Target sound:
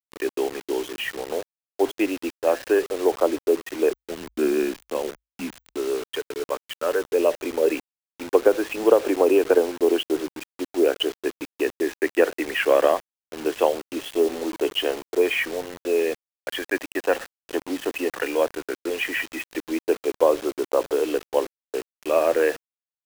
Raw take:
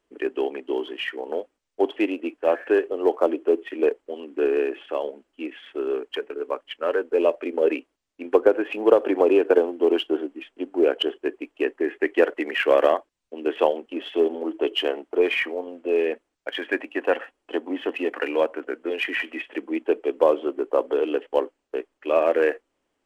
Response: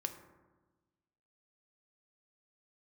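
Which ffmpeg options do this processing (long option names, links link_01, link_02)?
-filter_complex "[0:a]acrusher=bits=5:mix=0:aa=0.000001,asettb=1/sr,asplit=3[link_01][link_02][link_03];[link_01]atrim=end=3.914[link_04];[link_02]atrim=start=3.91:end=5.77,asetpts=PTS-STARTPTS,afade=type=in:duration=0.004:curve=qsin,afade=type=out:start_time=1.856:duration=0.004:curve=qsin,afreqshift=-55[link_05];[link_03]atrim=start=5.766[link_06];[link_04][link_05]acrossfade=duration=0.004:curve1=hsin:curve2=qsin[link_07];[link_07][link_06]acrossfade=duration=0.004:curve1=qsin:curve2=hsin"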